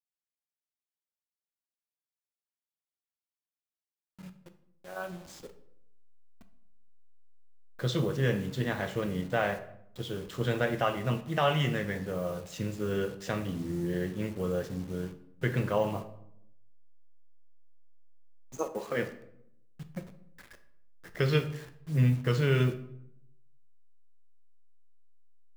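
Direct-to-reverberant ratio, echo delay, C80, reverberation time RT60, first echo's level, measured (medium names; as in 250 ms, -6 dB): 8.0 dB, no echo, 16.0 dB, 0.75 s, no echo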